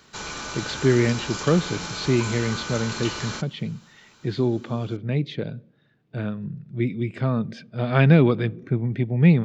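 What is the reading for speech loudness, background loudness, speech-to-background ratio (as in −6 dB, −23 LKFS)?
−24.0 LKFS, −32.0 LKFS, 8.0 dB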